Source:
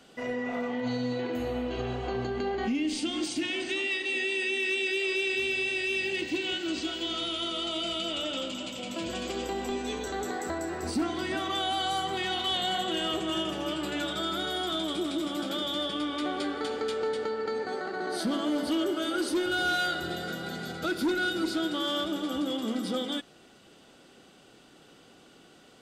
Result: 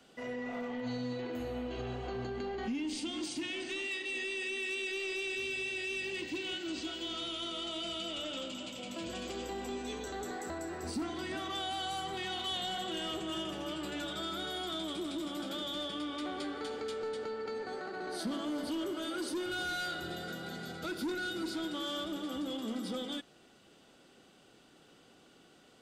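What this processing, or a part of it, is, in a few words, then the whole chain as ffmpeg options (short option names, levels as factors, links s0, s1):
one-band saturation: -filter_complex "[0:a]acrossover=split=220|3900[s0][s1][s2];[s1]asoftclip=type=tanh:threshold=0.0398[s3];[s0][s3][s2]amix=inputs=3:normalize=0,volume=0.531"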